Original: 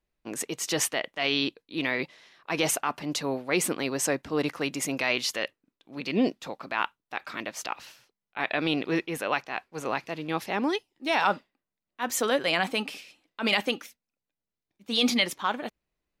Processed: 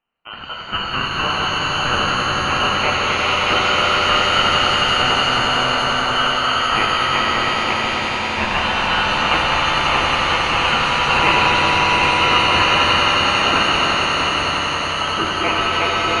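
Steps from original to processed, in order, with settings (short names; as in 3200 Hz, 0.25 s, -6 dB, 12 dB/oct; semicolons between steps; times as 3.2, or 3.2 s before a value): regenerating reverse delay 0.333 s, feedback 72%, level -7.5 dB; HPF 390 Hz 24 dB/oct; in parallel at +2.5 dB: limiter -20.5 dBFS, peak gain reduction 10.5 dB; on the sum: inverted band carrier 2600 Hz; ring modulator 820 Hz; on a send: swelling echo 91 ms, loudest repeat 5, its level -8 dB; on the sum: shimmer reverb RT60 3.5 s, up +7 st, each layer -8 dB, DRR -1.5 dB; gain +3.5 dB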